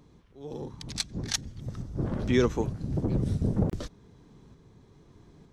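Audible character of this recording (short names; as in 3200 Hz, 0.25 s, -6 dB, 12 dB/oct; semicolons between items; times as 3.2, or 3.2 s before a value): tremolo saw up 1.1 Hz, depth 35%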